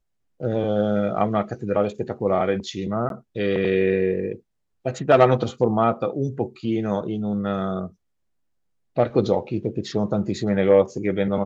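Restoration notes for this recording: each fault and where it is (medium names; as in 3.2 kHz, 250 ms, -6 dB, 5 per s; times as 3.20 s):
3.09–3.10 s: dropout 12 ms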